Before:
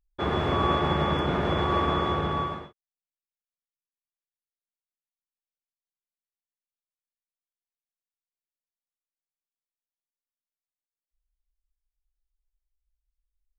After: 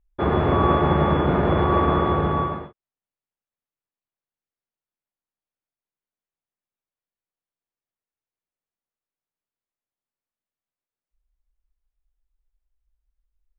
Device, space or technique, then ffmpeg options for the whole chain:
phone in a pocket: -af "lowpass=3400,highshelf=frequency=2100:gain=-11.5,volume=7dB"

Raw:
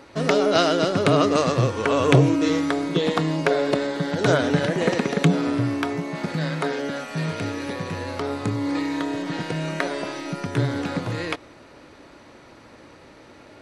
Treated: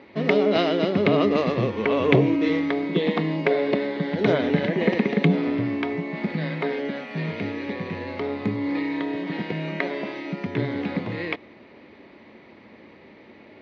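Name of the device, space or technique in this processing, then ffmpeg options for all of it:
guitar cabinet: -af "highpass=82,equalizer=frequency=130:width_type=q:width=4:gain=-4,equalizer=frequency=210:width_type=q:width=4:gain=10,equalizer=frequency=390:width_type=q:width=4:gain=5,equalizer=frequency=1400:width_type=q:width=4:gain=-8,equalizer=frequency=2100:width_type=q:width=4:gain=8,lowpass=frequency=3900:width=0.5412,lowpass=frequency=3900:width=1.3066,volume=-3dB"

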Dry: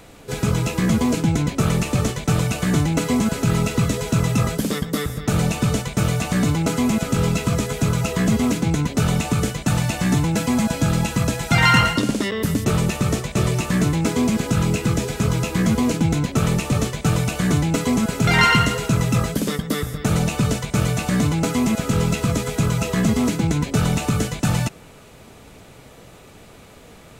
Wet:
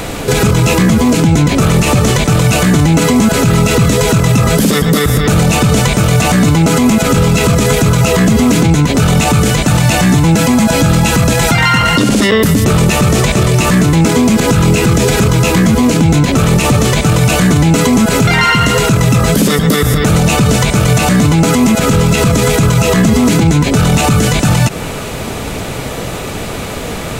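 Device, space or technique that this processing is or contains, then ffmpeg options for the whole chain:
loud club master: -af "acompressor=threshold=-24dB:ratio=2,asoftclip=type=hard:threshold=-13dB,alimiter=level_in=25dB:limit=-1dB:release=50:level=0:latency=1,volume=-1dB"

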